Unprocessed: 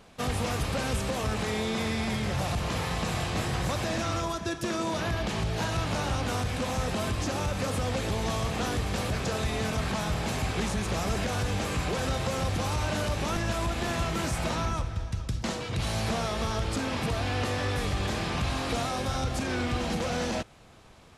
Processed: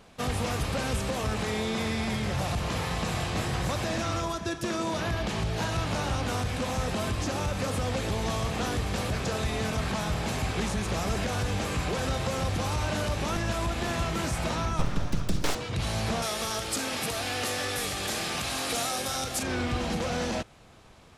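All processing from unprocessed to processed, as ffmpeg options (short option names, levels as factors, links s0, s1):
-filter_complex "[0:a]asettb=1/sr,asplit=3[s0][s1][s2];[s0]atrim=end=14.794[s3];[s1]atrim=start=14.79:end=15.55,asetpts=PTS-STARTPTS,afade=t=in:d=0.004:c=qsin,afade=t=out:st=0.756:d=0.004:c=qsin,acontrast=62,aeval=exprs='abs(val(0))':c=same[s4];[s2]atrim=start=15.546[s5];[s3][s4]acrossfade=d=0.004:c1=hsin:c2=qsin[s6];[s6][s5]acrossfade=d=0.004:c1=qsin:c2=hsin,asettb=1/sr,asplit=3[s7][s8][s9];[s7]atrim=end=16.224[s10];[s8]atrim=start=16.22:end=19.43,asetpts=PTS-STARTPTS,afade=t=in:d=0.004:c=qsin,afade=t=out:st=3.206:d=0.004:c=qsin,aemphasis=mode=production:type=bsi,bandreject=f=1000:w=9.7[s11];[s9]atrim=start=19.426[s12];[s10][s11]acrossfade=d=0.004:c1=hsin:c2=qsin[s13];[s13][s12]acrossfade=d=0.004:c1=qsin:c2=hsin"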